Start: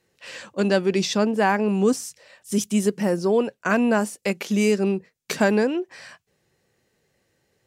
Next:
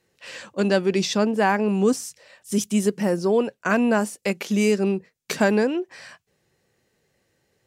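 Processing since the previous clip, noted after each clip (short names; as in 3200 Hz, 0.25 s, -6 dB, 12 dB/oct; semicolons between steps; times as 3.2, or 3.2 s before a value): nothing audible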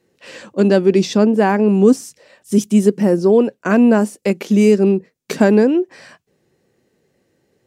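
bell 290 Hz +10.5 dB 2.1 oct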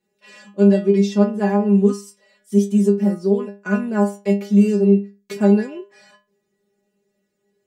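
metallic resonator 200 Hz, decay 0.32 s, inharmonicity 0.002; gain +5 dB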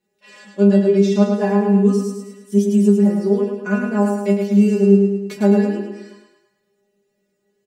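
feedback echo 0.107 s, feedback 50%, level -5 dB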